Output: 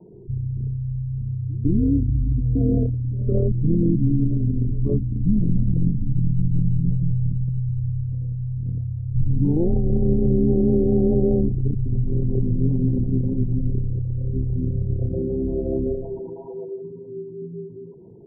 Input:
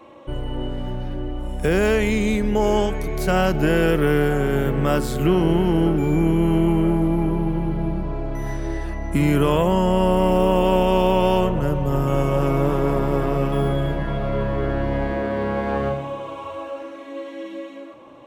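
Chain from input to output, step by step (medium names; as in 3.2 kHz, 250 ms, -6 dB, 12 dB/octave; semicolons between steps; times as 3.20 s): resonances exaggerated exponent 3; inverse Chebyshev low-pass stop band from 2.5 kHz, stop band 60 dB; frequency shift -160 Hz; vibrato 1.9 Hz 15 cents; pre-echo 155 ms -22 dB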